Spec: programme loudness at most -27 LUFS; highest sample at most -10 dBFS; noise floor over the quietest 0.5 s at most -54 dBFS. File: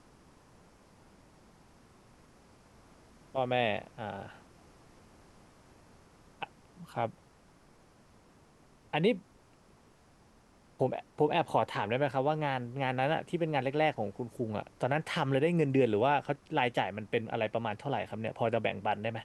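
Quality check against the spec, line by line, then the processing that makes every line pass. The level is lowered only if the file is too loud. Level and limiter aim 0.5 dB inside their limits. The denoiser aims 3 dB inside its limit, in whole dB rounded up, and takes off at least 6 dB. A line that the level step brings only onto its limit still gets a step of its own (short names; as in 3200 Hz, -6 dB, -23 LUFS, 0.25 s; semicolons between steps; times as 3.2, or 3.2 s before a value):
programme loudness -32.0 LUFS: OK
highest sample -14.0 dBFS: OK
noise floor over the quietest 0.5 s -62 dBFS: OK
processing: none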